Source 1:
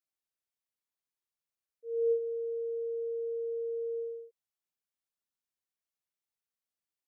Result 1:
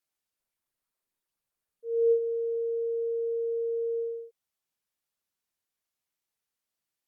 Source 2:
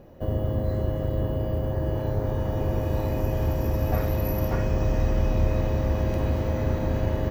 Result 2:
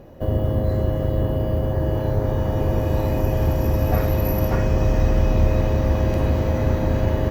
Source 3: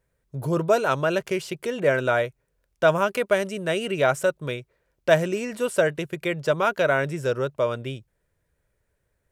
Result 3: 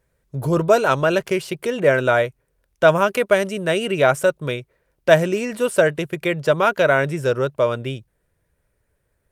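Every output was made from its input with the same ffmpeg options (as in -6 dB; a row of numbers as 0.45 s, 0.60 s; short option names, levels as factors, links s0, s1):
-af "volume=1.78" -ar 48000 -c:a libopus -b:a 48k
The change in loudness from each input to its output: +5.0 LU, +5.0 LU, +5.0 LU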